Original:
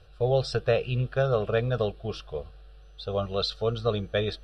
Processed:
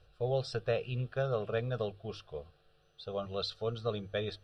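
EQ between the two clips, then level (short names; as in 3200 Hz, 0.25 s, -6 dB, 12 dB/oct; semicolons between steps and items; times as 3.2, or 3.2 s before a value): notches 50/100 Hz; -8.0 dB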